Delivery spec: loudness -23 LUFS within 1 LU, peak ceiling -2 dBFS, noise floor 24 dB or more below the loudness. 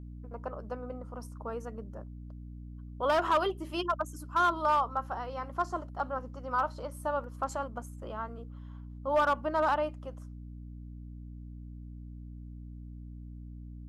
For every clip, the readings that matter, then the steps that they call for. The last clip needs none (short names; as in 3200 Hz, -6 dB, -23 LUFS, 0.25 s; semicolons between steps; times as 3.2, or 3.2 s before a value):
clipped 0.4%; flat tops at -20.0 dBFS; hum 60 Hz; harmonics up to 300 Hz; hum level -42 dBFS; loudness -32.5 LUFS; peak -20.0 dBFS; loudness target -23.0 LUFS
-> clip repair -20 dBFS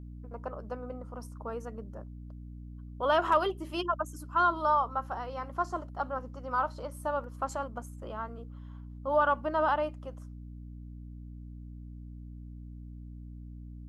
clipped 0.0%; hum 60 Hz; harmonics up to 300 Hz; hum level -42 dBFS
-> de-hum 60 Hz, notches 5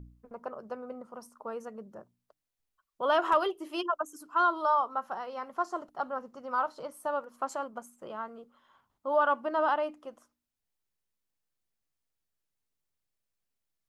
hum none; loudness -31.5 LUFS; peak -12.5 dBFS; loudness target -23.0 LUFS
-> gain +8.5 dB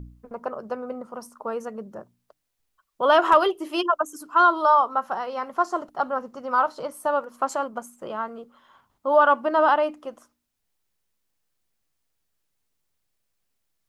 loudness -23.0 LUFS; peak -4.0 dBFS; noise floor -77 dBFS